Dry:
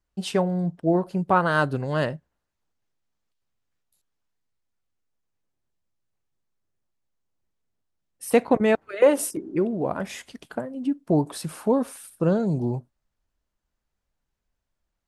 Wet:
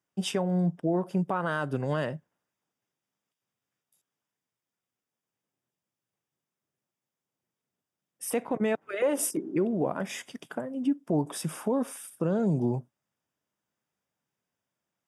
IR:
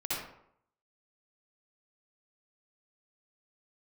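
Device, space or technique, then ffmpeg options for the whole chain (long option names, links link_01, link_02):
PA system with an anti-feedback notch: -af "highpass=frequency=120:width=0.5412,highpass=frequency=120:width=1.3066,asuperstop=centerf=4200:order=8:qfactor=5.9,alimiter=limit=-18dB:level=0:latency=1:release=161"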